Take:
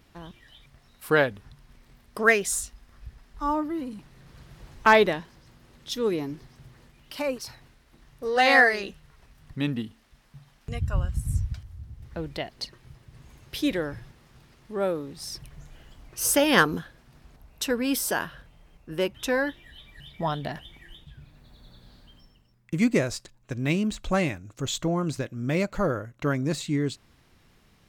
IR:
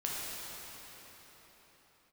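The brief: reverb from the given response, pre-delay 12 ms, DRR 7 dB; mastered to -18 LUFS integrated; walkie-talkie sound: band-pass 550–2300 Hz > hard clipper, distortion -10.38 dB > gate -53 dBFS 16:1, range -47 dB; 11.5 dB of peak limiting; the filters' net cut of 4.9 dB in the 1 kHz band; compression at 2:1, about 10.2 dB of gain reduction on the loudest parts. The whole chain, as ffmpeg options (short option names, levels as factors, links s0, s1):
-filter_complex "[0:a]equalizer=f=1000:t=o:g=-5.5,acompressor=threshold=0.02:ratio=2,alimiter=level_in=1.41:limit=0.0631:level=0:latency=1,volume=0.708,asplit=2[s0][s1];[1:a]atrim=start_sample=2205,adelay=12[s2];[s1][s2]afir=irnorm=-1:irlink=0,volume=0.251[s3];[s0][s3]amix=inputs=2:normalize=0,highpass=550,lowpass=2300,asoftclip=type=hard:threshold=0.0126,agate=range=0.00447:threshold=0.00224:ratio=16,volume=25.1"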